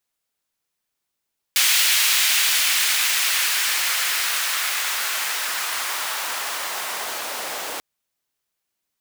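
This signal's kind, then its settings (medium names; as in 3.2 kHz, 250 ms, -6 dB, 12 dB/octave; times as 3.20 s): swept filtered noise pink, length 6.24 s highpass, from 2.5 kHz, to 530 Hz, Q 1.1, linear, gain ramp -15 dB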